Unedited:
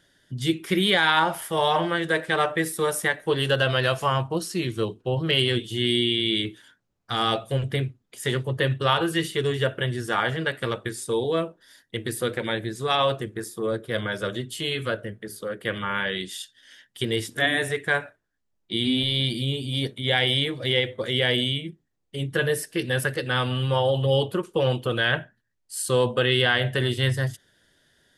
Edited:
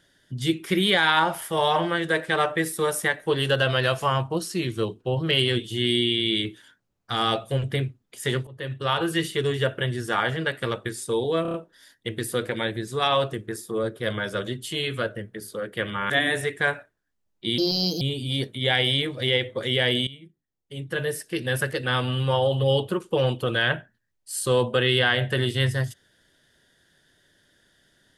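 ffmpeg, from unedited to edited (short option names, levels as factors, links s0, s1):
-filter_complex "[0:a]asplit=10[s0][s1][s2][s3][s4][s5][s6][s7][s8][s9];[s0]atrim=end=8.47,asetpts=PTS-STARTPTS,afade=t=out:st=8.466:d=0.004:c=hsin:silence=0.0841395[s10];[s1]atrim=start=8.47:end=11.452,asetpts=PTS-STARTPTS,afade=t=in:d=0.64:silence=0.0841395[s11];[s2]atrim=start=11.418:end=11.452[s12];[s3]atrim=start=11.418:end=11.452[s13];[s4]atrim=start=11.418:end=11.452[s14];[s5]atrim=start=11.418:end=15.982[s15];[s6]atrim=start=17.368:end=18.854[s16];[s7]atrim=start=18.85:end=19.44,asetpts=PTS-STARTPTS,asetrate=60417,aresample=44100[s17];[s8]atrim=start=19.436:end=21.5,asetpts=PTS-STARTPTS,afade=t=out:st=2.06:d=0.004:c=hsin:silence=0.149624[s18];[s9]atrim=start=21.5,asetpts=PTS-STARTPTS,afade=t=in:d=1.62:silence=0.149624[s19];[s10][s11]concat=n=2:v=0:a=1[s20];[s20][s12]acrossfade=d=0.004:c1=hsin:c2=hsin[s21];[s21][s13]acrossfade=d=0.004:c1=hsin:c2=hsin[s22];[s22][s14]acrossfade=d=0.004:c1=hsin:c2=hsin[s23];[s23][s15]acrossfade=d=0.004:c1=hsin:c2=hsin[s24];[s24][s16]acrossfade=d=0.004:c1=hsin:c2=hsin[s25];[s25][s17]acrossfade=d=0.004:c1=hsin:c2=hsin[s26];[s18][s19]concat=n=2:v=0:a=1[s27];[s26][s27]acrossfade=d=0.004:c1=hsin:c2=hsin"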